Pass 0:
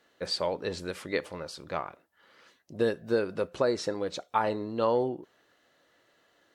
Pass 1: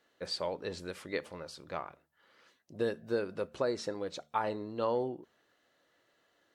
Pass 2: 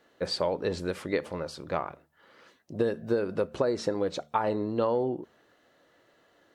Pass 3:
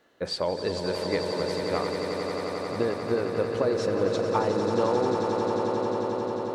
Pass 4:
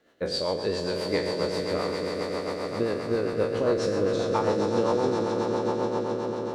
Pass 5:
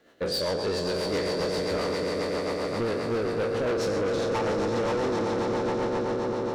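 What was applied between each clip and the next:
de-hum 74.35 Hz, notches 3; gain -5.5 dB
tilt shelf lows +3.5 dB, about 1400 Hz; compressor, threshold -30 dBFS, peak gain reduction 7 dB; gain +7.5 dB
swelling echo 89 ms, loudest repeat 8, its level -9 dB
spectral trails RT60 0.87 s; rotary speaker horn 7.5 Hz
soft clip -28 dBFS, distortion -9 dB; gain +4.5 dB

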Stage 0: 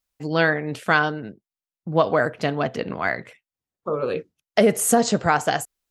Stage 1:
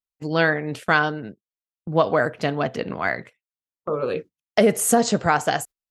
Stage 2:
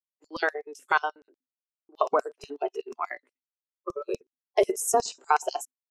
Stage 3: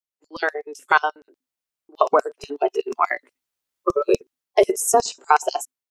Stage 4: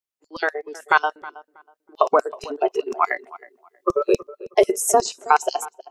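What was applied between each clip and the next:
gate -37 dBFS, range -17 dB
rippled Chebyshev high-pass 250 Hz, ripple 9 dB; LFO high-pass square 8.2 Hz 370–5300 Hz; spectral noise reduction 17 dB
AGC gain up to 15 dB; gain -1 dB
tape echo 0.319 s, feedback 25%, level -17 dB, low-pass 1600 Hz

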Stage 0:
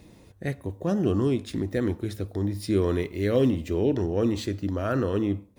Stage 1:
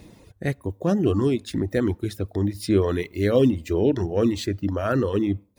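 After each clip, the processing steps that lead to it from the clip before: reverb removal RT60 0.85 s; gain +4.5 dB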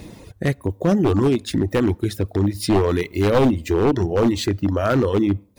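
one-sided fold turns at -15.5 dBFS; in parallel at +1 dB: compressor, threshold -31 dBFS, peak gain reduction 14.5 dB; on the sum: gain +2 dB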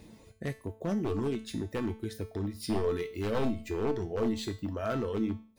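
resonator 220 Hz, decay 0.43 s, harmonics all, mix 80%; gain -2.5 dB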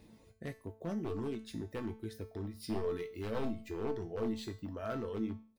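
bell 6900 Hz -4 dB 0.42 oct; doubler 18 ms -12 dB; gain -7 dB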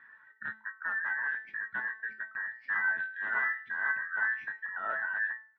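band inversion scrambler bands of 2000 Hz; speaker cabinet 140–2300 Hz, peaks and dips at 470 Hz -5 dB, 990 Hz +5 dB, 1500 Hz +4 dB; gain +2 dB

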